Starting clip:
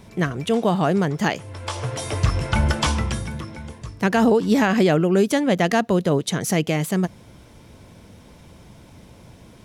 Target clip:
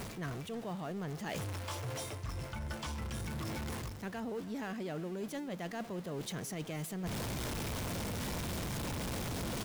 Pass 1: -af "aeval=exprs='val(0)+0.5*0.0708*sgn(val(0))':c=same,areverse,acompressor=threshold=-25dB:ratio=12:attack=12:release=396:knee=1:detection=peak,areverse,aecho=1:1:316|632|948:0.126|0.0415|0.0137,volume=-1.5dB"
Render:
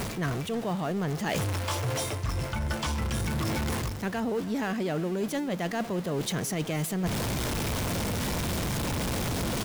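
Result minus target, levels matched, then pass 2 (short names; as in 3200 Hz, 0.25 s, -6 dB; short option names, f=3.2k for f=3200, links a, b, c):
compressor: peak gain reduction -10 dB
-af "aeval=exprs='val(0)+0.5*0.0708*sgn(val(0))':c=same,areverse,acompressor=threshold=-36dB:ratio=12:attack=12:release=396:knee=1:detection=peak,areverse,aecho=1:1:316|632|948:0.126|0.0415|0.0137,volume=-1.5dB"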